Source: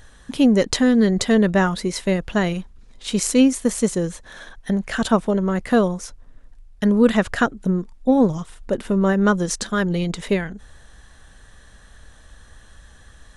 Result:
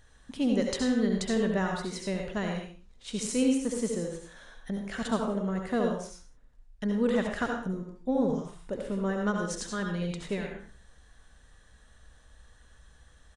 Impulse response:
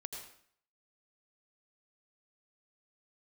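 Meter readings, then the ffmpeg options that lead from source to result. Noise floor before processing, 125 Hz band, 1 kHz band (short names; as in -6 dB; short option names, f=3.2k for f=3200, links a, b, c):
-48 dBFS, -11.0 dB, -10.5 dB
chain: -filter_complex "[1:a]atrim=start_sample=2205,afade=t=out:st=0.4:d=0.01,atrim=end_sample=18081,asetrate=52920,aresample=44100[a];[0:a][a]afir=irnorm=-1:irlink=0,aresample=22050,aresample=44100,volume=-6.5dB"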